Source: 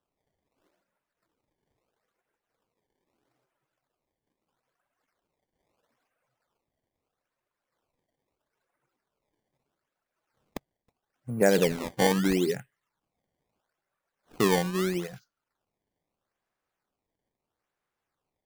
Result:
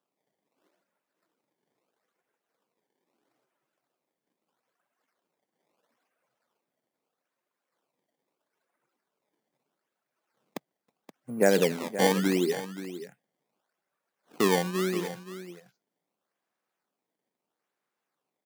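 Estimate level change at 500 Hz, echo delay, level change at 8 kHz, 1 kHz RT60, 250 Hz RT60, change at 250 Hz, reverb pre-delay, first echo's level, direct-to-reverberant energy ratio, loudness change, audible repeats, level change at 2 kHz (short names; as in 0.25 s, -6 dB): +0.5 dB, 0.525 s, 0.0 dB, none, none, -0.5 dB, none, -13.0 dB, none, -0.5 dB, 1, 0.0 dB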